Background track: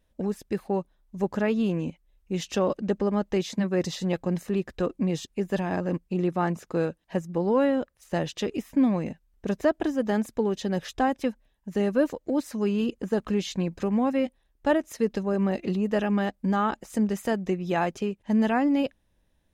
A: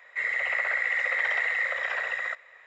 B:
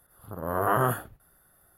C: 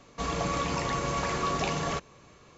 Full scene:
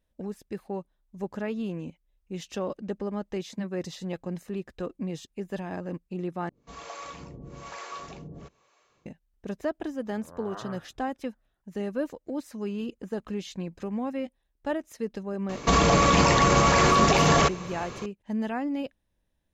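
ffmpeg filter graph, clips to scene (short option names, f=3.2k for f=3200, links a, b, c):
-filter_complex "[3:a]asplit=2[a][b];[0:a]volume=-7dB[c];[a]acrossover=split=450[d][e];[d]aeval=exprs='val(0)*(1-1/2+1/2*cos(2*PI*1.1*n/s))':c=same[f];[e]aeval=exprs='val(0)*(1-1/2-1/2*cos(2*PI*1.1*n/s))':c=same[g];[f][g]amix=inputs=2:normalize=0[h];[2:a]lowpass=3.2k[i];[b]alimiter=level_in=25dB:limit=-1dB:release=50:level=0:latency=1[j];[c]asplit=2[k][l];[k]atrim=end=6.494[m];[h]atrim=end=2.57,asetpts=PTS-STARTPTS,volume=-7.5dB[n];[l]atrim=start=9.056[o];[i]atrim=end=1.77,asetpts=PTS-STARTPTS,volume=-17dB,afade=t=in:d=0.004:c=hsin,afade=t=out:st=1.766:d=0.004:c=hsin,adelay=9850[p];[j]atrim=end=2.57,asetpts=PTS-STARTPTS,volume=-10dB,afade=t=in:d=0.004:c=hsin,afade=t=out:st=2.566:d=0.004:c=hsin,adelay=15490[q];[m][n]acrossfade=d=0.004:c1=hsin:c2=hsin[r];[r][o]acrossfade=d=0.004:c1=hsin:c2=hsin[s];[s][p][q]amix=inputs=3:normalize=0"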